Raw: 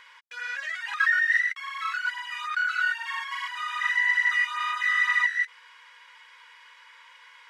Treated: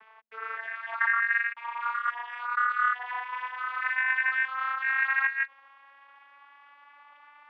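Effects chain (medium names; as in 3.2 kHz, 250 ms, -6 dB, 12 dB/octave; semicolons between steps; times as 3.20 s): vocoder on a note that slides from A3, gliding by +5 st; low-pass 1.9 kHz 12 dB/octave; bass shelf 440 Hz +4 dB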